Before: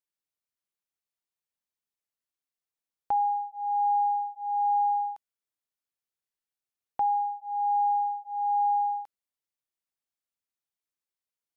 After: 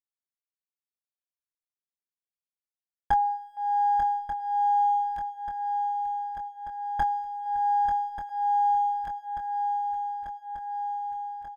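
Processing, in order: minimum comb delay 9.8 ms; doubler 24 ms -6.5 dB; reverb removal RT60 0.65 s; gate with hold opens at -44 dBFS; on a send: swung echo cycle 1.187 s, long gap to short 3:1, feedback 63%, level -8 dB; on the sum: dynamic EQ 490 Hz, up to -6 dB, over -47 dBFS, Q 1.6; gain +6.5 dB

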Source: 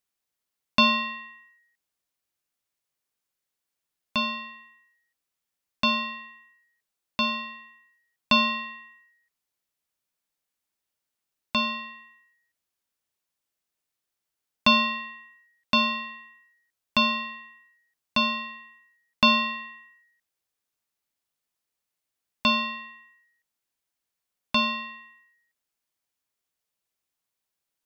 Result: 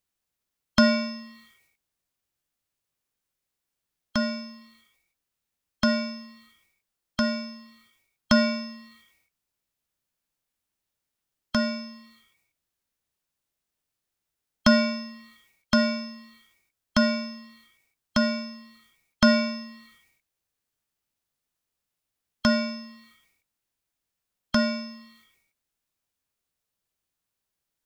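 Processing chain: low shelf 170 Hz +9.5 dB; formant shift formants +3 st

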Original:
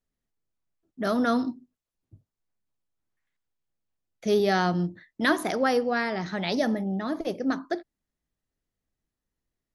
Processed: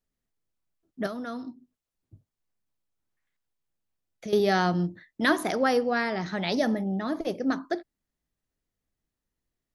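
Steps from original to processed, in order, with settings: 1.06–4.33 compressor 3:1, threshold -37 dBFS, peak gain reduction 12.5 dB

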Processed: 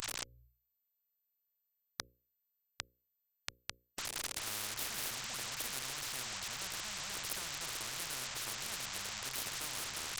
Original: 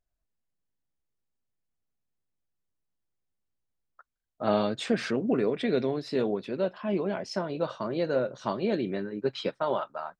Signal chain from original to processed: delta modulation 32 kbps, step -32.5 dBFS; Chebyshev band-stop 120–1200 Hz, order 3; dynamic EQ 690 Hz, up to -5 dB, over -54 dBFS, Q 1.5; one-sided clip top -36 dBFS; notches 60/120/180/240/300/360/420/480/540 Hz; spectral compressor 10:1; gain +11 dB

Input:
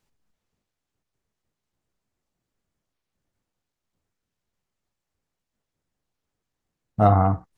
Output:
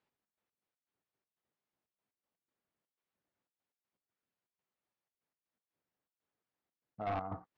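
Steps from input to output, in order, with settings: HPF 150 Hz 6 dB/oct; low shelf 190 Hz -10.5 dB; compressor 4:1, threshold -21 dBFS, peak gain reduction 6.5 dB; step gate "xx.x.x.xxx.xx" 121 bpm -12 dB; overloaded stage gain 27.5 dB; air absorption 220 m; gain -4 dB

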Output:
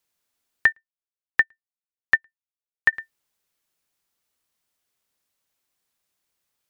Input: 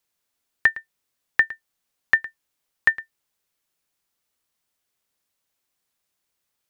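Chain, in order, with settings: 0.72–2.93 upward expander 2.5:1, over -30 dBFS

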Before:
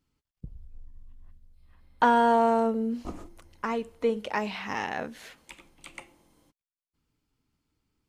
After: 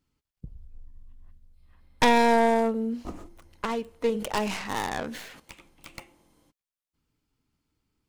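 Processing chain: tracing distortion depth 0.45 ms; 4.1–5.4 sustainer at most 50 dB/s

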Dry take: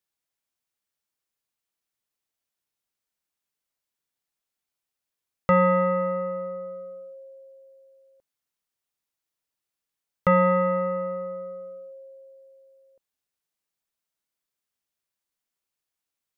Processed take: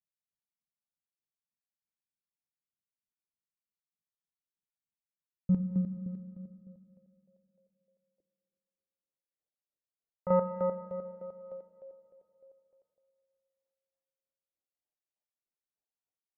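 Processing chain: low-pass sweep 180 Hz -> 780 Hz, 6.85–10.18; chopper 3.3 Hz, depth 65%, duty 30%; rotary speaker horn 5 Hz, later 0.9 Hz, at 8.6; on a send: reverb RT60 2.7 s, pre-delay 5 ms, DRR 11 dB; on the sum: gain -6.5 dB

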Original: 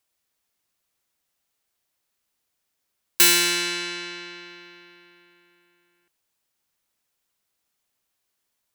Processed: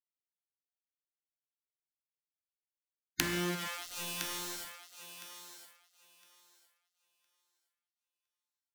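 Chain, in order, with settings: tracing distortion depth 0.15 ms; formant shift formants -6 st; treble ducked by the level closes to 550 Hz, closed at -26 dBFS; ten-band EQ 125 Hz -5 dB, 250 Hz +4 dB, 500 Hz -12 dB, 1000 Hz -12 dB, 2000 Hz +8 dB, 8000 Hz -5 dB, 16000 Hz +5 dB; in parallel at +2 dB: compressor 6:1, threshold -32 dBFS, peak gain reduction 8 dB; on the sum: harmonic tremolo 1.4 Hz, depth 50%, crossover 1300 Hz; bit-crush 6-bit; wow and flutter 16 cents; spectral gate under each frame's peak -10 dB weak; thinning echo 1.011 s, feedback 19%, high-pass 350 Hz, level -10 dB

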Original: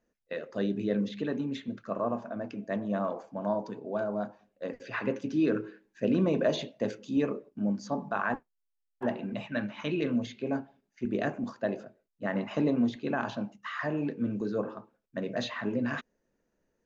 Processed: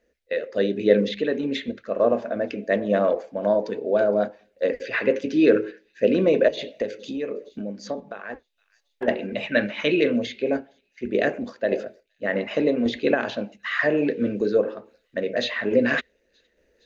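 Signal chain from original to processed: thin delay 0.464 s, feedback 53%, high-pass 4800 Hz, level -23.5 dB; 6.48–9.08 compressor 10:1, threshold -36 dBFS, peak gain reduction 14.5 dB; graphic EQ 125/500/1000/2000/4000 Hz -8/+12/-8/+10/+6 dB; random-step tremolo; bell 63 Hz +12.5 dB 0.77 oct; gain +6.5 dB

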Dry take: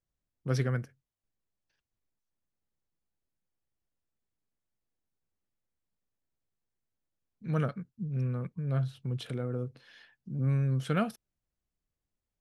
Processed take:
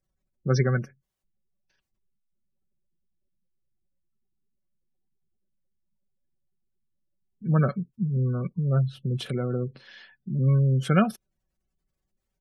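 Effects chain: comb 5.3 ms, depth 41%; spectral gate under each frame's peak -30 dB strong; gain +7 dB

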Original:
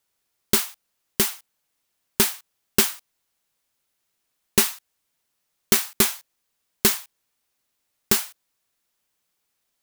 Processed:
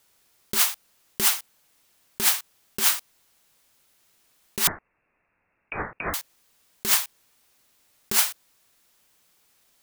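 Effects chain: negative-ratio compressor -27 dBFS, ratio -1; 4.67–6.14 inverted band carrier 2700 Hz; gain +5.5 dB

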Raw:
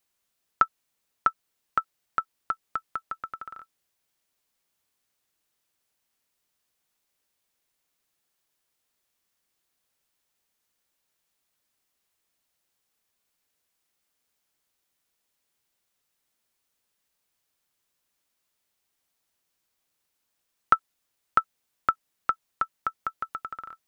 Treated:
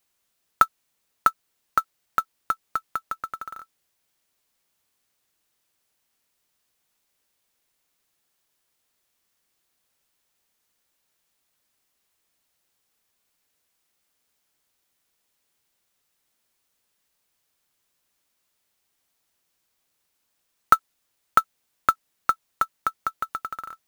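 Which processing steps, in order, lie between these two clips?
short-mantissa float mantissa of 2-bit; gain +4 dB

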